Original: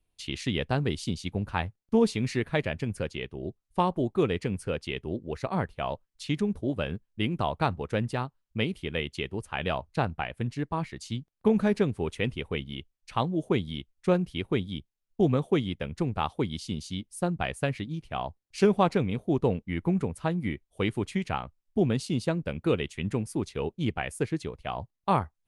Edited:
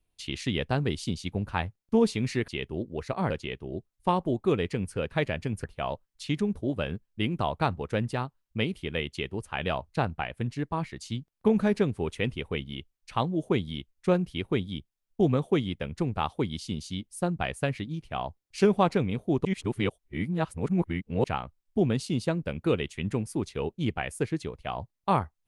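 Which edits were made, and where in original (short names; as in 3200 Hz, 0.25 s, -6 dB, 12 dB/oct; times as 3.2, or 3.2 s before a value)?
2.48–3.01 swap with 4.82–5.64
19.45–21.24 reverse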